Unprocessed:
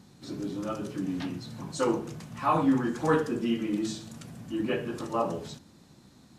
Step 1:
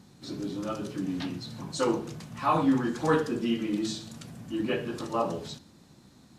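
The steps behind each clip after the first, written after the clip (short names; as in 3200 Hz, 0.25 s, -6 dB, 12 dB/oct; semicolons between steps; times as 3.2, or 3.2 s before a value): dynamic EQ 4100 Hz, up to +5 dB, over -56 dBFS, Q 1.6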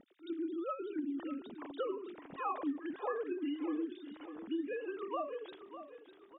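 sine-wave speech; compressor 6:1, threshold -35 dBFS, peak gain reduction 19 dB; on a send: feedback echo 0.601 s, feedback 43%, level -12 dB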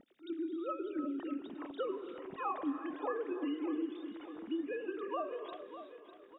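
non-linear reverb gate 0.4 s rising, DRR 9.5 dB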